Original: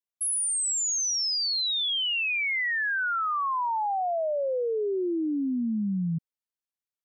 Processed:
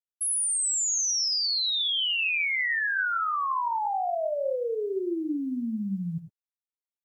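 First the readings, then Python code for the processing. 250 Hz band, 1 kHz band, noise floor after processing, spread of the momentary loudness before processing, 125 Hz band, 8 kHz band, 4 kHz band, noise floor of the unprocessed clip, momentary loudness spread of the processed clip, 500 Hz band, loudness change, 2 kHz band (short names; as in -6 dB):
-2.5 dB, 0.0 dB, under -85 dBFS, 4 LU, -3.0 dB, +1.0 dB, +0.5 dB, under -85 dBFS, 8 LU, -1.0 dB, 0.0 dB, +0.5 dB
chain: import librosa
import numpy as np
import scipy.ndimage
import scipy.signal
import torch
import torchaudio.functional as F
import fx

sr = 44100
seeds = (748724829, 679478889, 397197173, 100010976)

y = fx.dereverb_blind(x, sr, rt60_s=0.89)
y = fx.quant_dither(y, sr, seeds[0], bits=12, dither='none')
y = fx.rev_gated(y, sr, seeds[1], gate_ms=120, shape='rising', drr_db=7.0)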